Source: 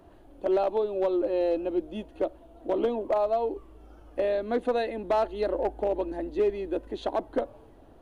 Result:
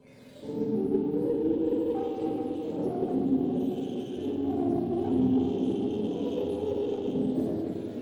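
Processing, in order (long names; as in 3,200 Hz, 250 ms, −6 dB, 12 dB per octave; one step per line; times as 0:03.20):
frequency axis turned over on the octave scale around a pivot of 410 Hz
downward compressor 2 to 1, threshold −41 dBFS, peak gain reduction 11.5 dB
echo through a band-pass that steps 776 ms, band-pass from 470 Hz, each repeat 0.7 octaves, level −8.5 dB
rectangular room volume 120 cubic metres, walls hard, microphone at 1.2 metres
windowed peak hold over 5 samples
level −2 dB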